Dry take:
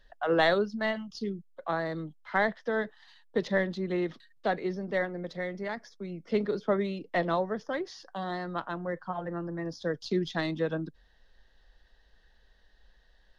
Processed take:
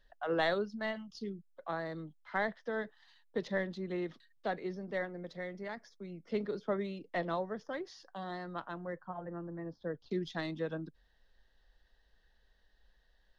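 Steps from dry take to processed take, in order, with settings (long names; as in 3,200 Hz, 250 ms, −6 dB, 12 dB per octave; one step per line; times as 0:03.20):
0:08.96–0:10.11: Bessel low-pass filter 1,500 Hz, order 2
level −7 dB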